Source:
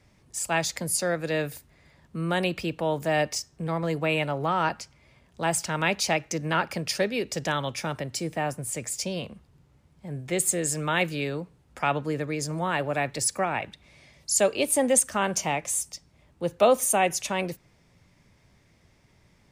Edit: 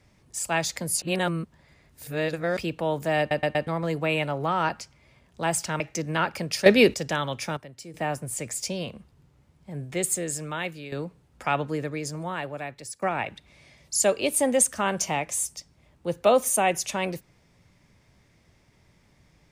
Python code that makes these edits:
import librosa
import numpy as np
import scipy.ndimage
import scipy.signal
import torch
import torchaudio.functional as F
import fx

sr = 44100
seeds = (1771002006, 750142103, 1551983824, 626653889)

y = fx.edit(x, sr, fx.reverse_span(start_s=1.02, length_s=1.55),
    fx.stutter_over(start_s=3.19, slice_s=0.12, count=4),
    fx.cut(start_s=5.8, length_s=0.36),
    fx.clip_gain(start_s=7.02, length_s=0.28, db=11.5),
    fx.clip_gain(start_s=7.93, length_s=0.37, db=-11.5),
    fx.fade_out_to(start_s=10.2, length_s=1.08, floor_db=-11.5),
    fx.fade_out_to(start_s=12.04, length_s=1.34, floor_db=-16.0), tone=tone)